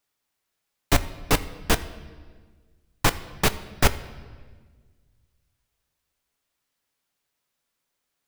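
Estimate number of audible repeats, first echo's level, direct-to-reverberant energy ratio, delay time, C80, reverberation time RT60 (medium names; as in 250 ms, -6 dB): no echo, no echo, 10.5 dB, no echo, 16.5 dB, 1.5 s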